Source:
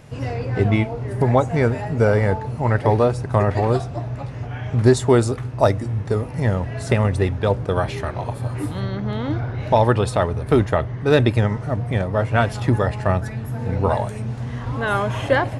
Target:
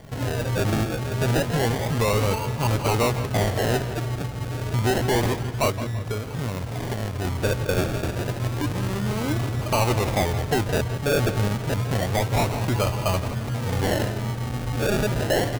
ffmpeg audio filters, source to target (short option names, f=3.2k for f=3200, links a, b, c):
-filter_complex "[0:a]highshelf=f=2.1k:g=9.5,acrossover=split=450|1400[a][b][c];[a]alimiter=limit=-14.5dB:level=0:latency=1:release=84[d];[d][b][c]amix=inputs=3:normalize=0,asettb=1/sr,asplit=3[e][f][g];[e]atrim=end=5.704[h];[f]atrim=start=5.7:end=7.25,asetpts=PTS-STARTPTS,afade=t=in:d=0.004:c=qsin,afade=t=out:st=1.546:d=0.004:c=qsin,acompressor=threshold=-25dB:ratio=5[i];[g]atrim=start=7.246[j];[h][i]acrossfade=d=0.004:c1=hsin:c2=qsin[k];[k][j]acrossfade=d=0.004:c1=qsin:c2=hsin,acrusher=samples=34:mix=1:aa=0.000001:lfo=1:lforange=20.4:lforate=0.29,asoftclip=type=tanh:threshold=-17dB,asplit=2[l][m];[m]adelay=168,lowpass=f=4.6k:p=1,volume=-12dB,asplit=2[n][o];[o]adelay=168,lowpass=f=4.6k:p=1,volume=0.48,asplit=2[p][q];[q]adelay=168,lowpass=f=4.6k:p=1,volume=0.48,asplit=2[r][s];[s]adelay=168,lowpass=f=4.6k:p=1,volume=0.48,asplit=2[t][u];[u]adelay=168,lowpass=f=4.6k:p=1,volume=0.48[v];[n][p][r][t][v]amix=inputs=5:normalize=0[w];[l][w]amix=inputs=2:normalize=0"